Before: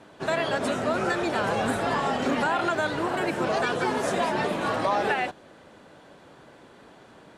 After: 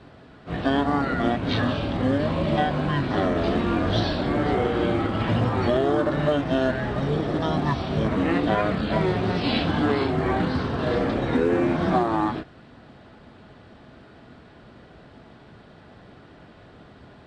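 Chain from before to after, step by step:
high-shelf EQ 2,600 Hz +7.5 dB
log-companded quantiser 8 bits
wrong playback speed 78 rpm record played at 33 rpm
level +2 dB

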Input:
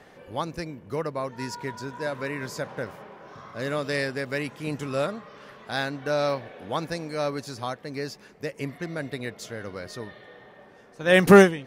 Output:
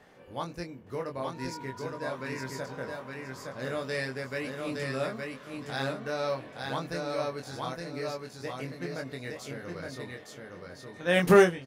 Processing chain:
double-tracking delay 23 ms −4 dB
on a send: repeating echo 866 ms, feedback 25%, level −3.5 dB
on the sum: level −7 dB

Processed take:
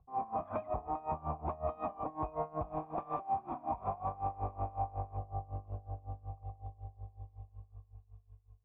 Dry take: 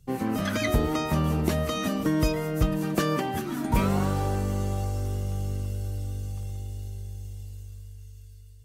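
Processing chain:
0:02.68–0:05.17: gap after every zero crossing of 0.26 ms
tube saturation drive 23 dB, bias 0.3
formant resonators in series a
parametric band 67 Hz +10.5 dB 1.2 octaves
hum removal 65.58 Hz, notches 11
brickwall limiter −41 dBFS, peak gain reduction 7 dB
tremolo with a sine in dB 5.4 Hz, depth 21 dB
level +17 dB

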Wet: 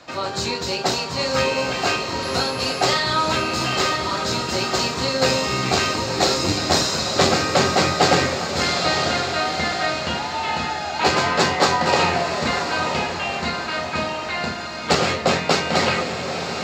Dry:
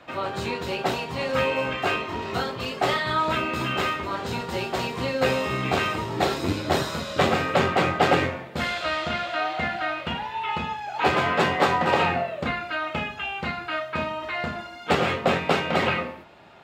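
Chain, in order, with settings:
0:02.22–0:02.84: steady tone 11,000 Hz −48 dBFS
flat-topped bell 5,600 Hz +13 dB 1.1 octaves
feedback delay with all-pass diffusion 981 ms, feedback 45%, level −6.5 dB
level +2.5 dB

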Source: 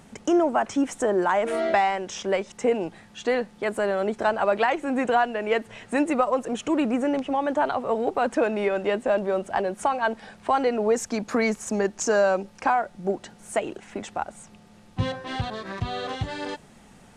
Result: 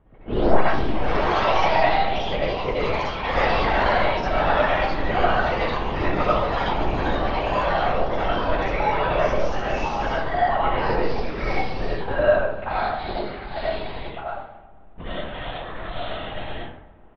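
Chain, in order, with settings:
in parallel at −2 dB: output level in coarse steps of 19 dB
on the sum: high-pass filter 130 Hz
linear-prediction vocoder at 8 kHz whisper
high-shelf EQ 2,800 Hz +10 dB
on a send: repeating echo 128 ms, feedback 59%, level −16 dB
on the sum: comb and all-pass reverb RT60 0.67 s, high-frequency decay 0.55×, pre-delay 45 ms, DRR −6 dB
delay with pitch and tempo change per echo 91 ms, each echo +3 semitones, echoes 3
low-pass that shuts in the quiet parts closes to 950 Hz, open at −10.5 dBFS
0:03.37–0:04.05: envelope flattener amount 70%
level −10 dB

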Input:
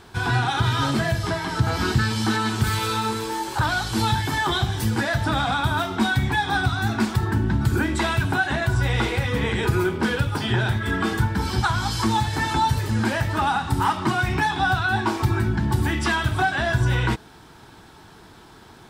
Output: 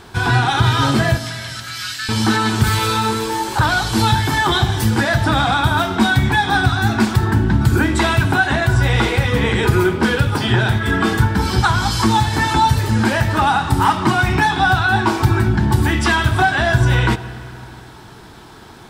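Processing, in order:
0:01.18–0:02.09: Bessel high-pass filter 2,400 Hz, order 8
convolution reverb RT60 2.9 s, pre-delay 50 ms, DRR 15 dB
level +6.5 dB

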